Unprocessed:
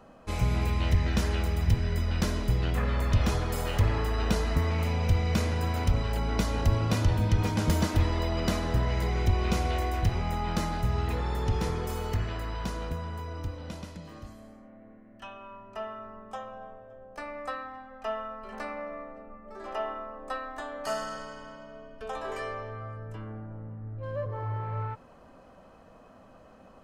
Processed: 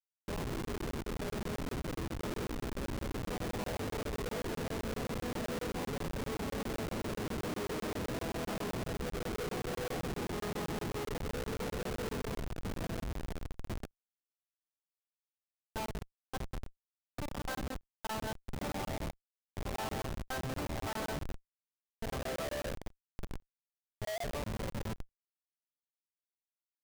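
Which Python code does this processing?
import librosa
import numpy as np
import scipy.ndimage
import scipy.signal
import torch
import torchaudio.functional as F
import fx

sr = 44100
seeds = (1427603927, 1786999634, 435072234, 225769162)

p1 = fx.wiener(x, sr, points=25)
p2 = fx.tube_stage(p1, sr, drive_db=30.0, bias=0.75)
p3 = fx.dynamic_eq(p2, sr, hz=400.0, q=2.4, threshold_db=-53.0, ratio=4.0, max_db=4)
p4 = fx.spec_gate(p3, sr, threshold_db=-20, keep='strong')
p5 = scipy.signal.sosfilt(scipy.signal.butter(4, 180.0, 'highpass', fs=sr, output='sos'), p4)
p6 = fx.high_shelf(p5, sr, hz=3900.0, db=4.0)
p7 = fx.echo_feedback(p6, sr, ms=190, feedback_pct=20, wet_db=-7.5)
p8 = np.clip(p7, -10.0 ** (-34.5 / 20.0), 10.0 ** (-34.5 / 20.0))
p9 = p7 + (p8 * 10.0 ** (-4.0 / 20.0))
p10 = fx.formant_shift(p9, sr, semitones=3)
p11 = fx.add_hum(p10, sr, base_hz=50, snr_db=29)
p12 = fx.schmitt(p11, sr, flips_db=-37.5)
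p13 = fx.buffer_crackle(p12, sr, first_s=0.65, period_s=0.13, block=1024, kind='zero')
y = p13 * 10.0 ** (1.0 / 20.0)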